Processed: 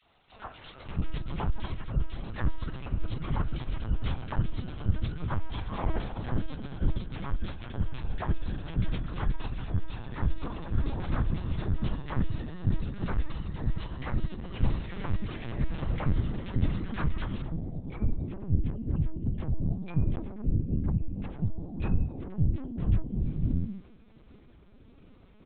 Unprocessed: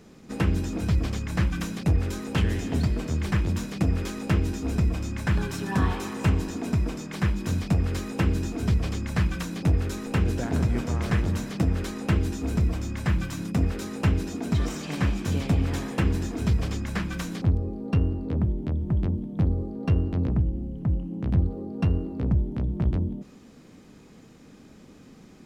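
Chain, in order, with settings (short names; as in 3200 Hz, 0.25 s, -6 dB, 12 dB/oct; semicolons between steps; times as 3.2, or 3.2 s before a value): gliding pitch shift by -11 st ending unshifted; three bands offset in time highs, mids, lows 30/570 ms, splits 410/1800 Hz; LPC vocoder at 8 kHz pitch kept; gain -1.5 dB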